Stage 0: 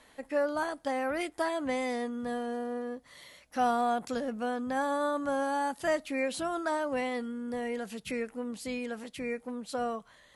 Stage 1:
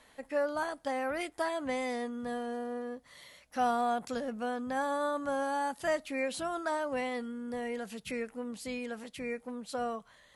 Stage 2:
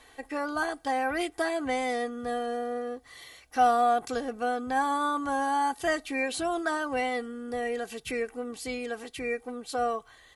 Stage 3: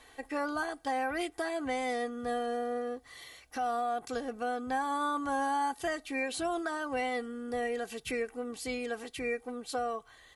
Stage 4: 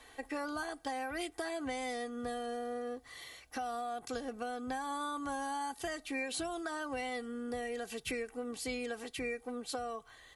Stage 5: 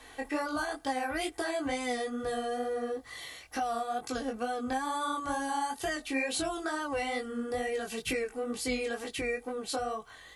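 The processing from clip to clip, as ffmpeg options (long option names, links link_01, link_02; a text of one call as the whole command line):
ffmpeg -i in.wav -af "equalizer=frequency=320:width=2.2:gain=-3,volume=-1.5dB" out.wav
ffmpeg -i in.wav -af "aecho=1:1:2.6:0.69,volume=4dB" out.wav
ffmpeg -i in.wav -af "alimiter=limit=-22.5dB:level=0:latency=1:release=388,volume=-1.5dB" out.wav
ffmpeg -i in.wav -filter_complex "[0:a]acrossover=split=160|3000[link_01][link_02][link_03];[link_02]acompressor=threshold=-36dB:ratio=6[link_04];[link_01][link_04][link_03]amix=inputs=3:normalize=0" out.wav
ffmpeg -i in.wav -af "flanger=delay=18.5:depth=4.3:speed=2.2,volume=8.5dB" out.wav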